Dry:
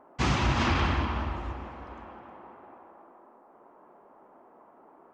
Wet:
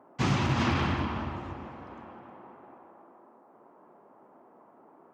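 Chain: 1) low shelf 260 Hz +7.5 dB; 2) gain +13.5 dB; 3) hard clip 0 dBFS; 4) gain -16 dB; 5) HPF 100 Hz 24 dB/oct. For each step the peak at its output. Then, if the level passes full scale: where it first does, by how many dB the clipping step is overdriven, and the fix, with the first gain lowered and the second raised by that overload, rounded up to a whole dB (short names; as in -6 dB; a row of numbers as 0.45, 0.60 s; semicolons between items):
-9.5, +4.0, 0.0, -16.0, -14.0 dBFS; step 2, 4.0 dB; step 2 +9.5 dB, step 4 -12 dB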